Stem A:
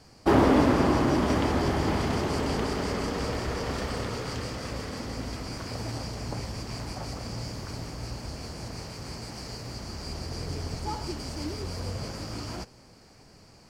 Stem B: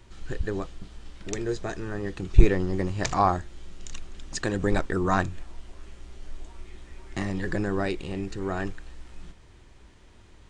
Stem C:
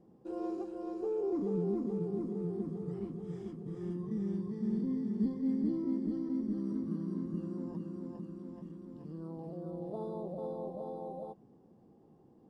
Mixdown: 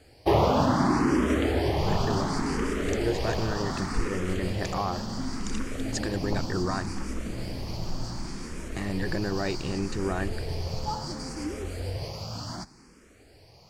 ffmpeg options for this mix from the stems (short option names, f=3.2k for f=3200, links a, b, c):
-filter_complex "[0:a]asplit=2[a][b];[b]afreqshift=0.68[c];[a][c]amix=inputs=2:normalize=1,volume=2.5dB[d];[1:a]dynaudnorm=f=130:g=3:m=11.5dB,alimiter=limit=-11dB:level=0:latency=1:release=131,adelay=1600,volume=-8.5dB[e];[2:a]adelay=350,volume=-4.5dB[f];[d][e][f]amix=inputs=3:normalize=0"